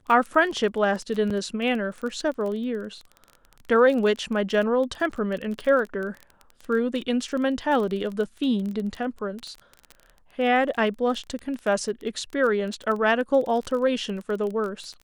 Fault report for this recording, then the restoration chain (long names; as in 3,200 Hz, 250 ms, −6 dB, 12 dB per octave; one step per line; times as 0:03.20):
surface crackle 22 per second −30 dBFS
0:01.30–0:01.31: drop-out 5.4 ms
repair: click removal
repair the gap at 0:01.30, 5.4 ms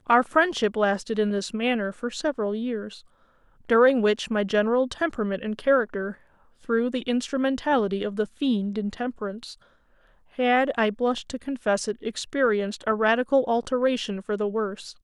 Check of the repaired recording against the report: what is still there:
none of them is left